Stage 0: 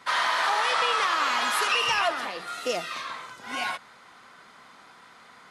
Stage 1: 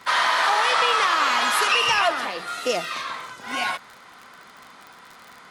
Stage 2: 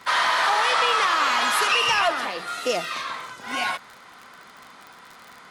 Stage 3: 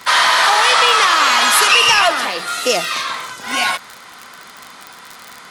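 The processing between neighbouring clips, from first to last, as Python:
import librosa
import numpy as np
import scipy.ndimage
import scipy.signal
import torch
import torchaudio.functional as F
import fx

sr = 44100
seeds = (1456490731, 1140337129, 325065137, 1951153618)

y1 = fx.dmg_crackle(x, sr, seeds[0], per_s=45.0, level_db=-37.0)
y1 = y1 * 10.0 ** (4.5 / 20.0)
y2 = 10.0 ** (-9.5 / 20.0) * np.tanh(y1 / 10.0 ** (-9.5 / 20.0))
y3 = fx.high_shelf(y2, sr, hz=3400.0, db=8.5)
y3 = y3 * 10.0 ** (6.5 / 20.0)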